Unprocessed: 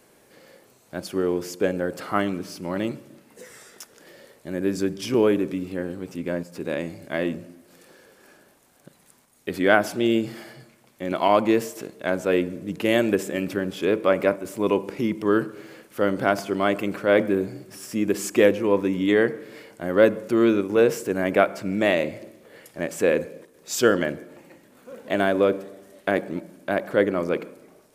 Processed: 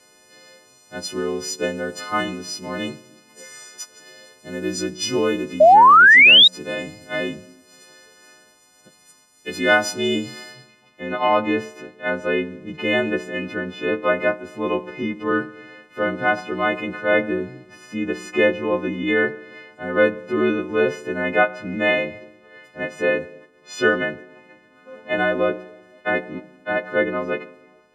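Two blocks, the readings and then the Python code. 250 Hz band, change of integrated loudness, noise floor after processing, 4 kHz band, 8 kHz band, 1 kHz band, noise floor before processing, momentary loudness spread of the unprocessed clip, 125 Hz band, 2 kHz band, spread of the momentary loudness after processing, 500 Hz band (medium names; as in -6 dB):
-2.0 dB, +5.0 dB, -54 dBFS, +15.5 dB, +2.5 dB, +9.5 dB, -58 dBFS, 15 LU, -2.0 dB, +10.5 dB, 17 LU, 0.0 dB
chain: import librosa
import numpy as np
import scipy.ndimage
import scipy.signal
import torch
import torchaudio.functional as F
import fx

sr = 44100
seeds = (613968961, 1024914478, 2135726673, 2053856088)

y = fx.freq_snap(x, sr, grid_st=3)
y = fx.filter_sweep_lowpass(y, sr, from_hz=6000.0, to_hz=2200.0, start_s=10.49, end_s=11.1, q=1.1)
y = fx.spec_paint(y, sr, seeds[0], shape='rise', start_s=5.6, length_s=0.88, low_hz=590.0, high_hz=3900.0, level_db=-8.0)
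y = y * 10.0 ** (-1.0 / 20.0)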